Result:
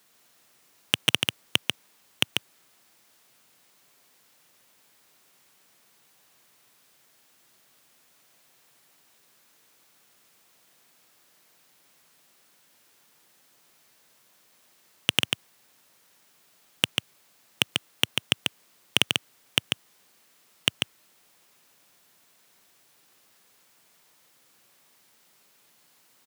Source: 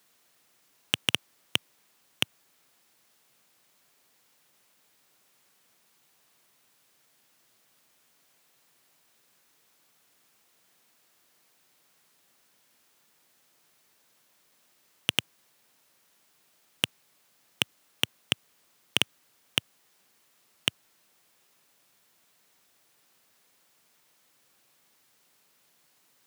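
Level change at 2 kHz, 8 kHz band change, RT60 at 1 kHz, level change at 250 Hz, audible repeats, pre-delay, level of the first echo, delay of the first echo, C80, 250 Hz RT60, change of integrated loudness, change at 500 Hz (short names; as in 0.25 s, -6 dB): +4.5 dB, +4.5 dB, none, +4.5 dB, 1, none, -4.0 dB, 0.142 s, none, none, +3.5 dB, +4.5 dB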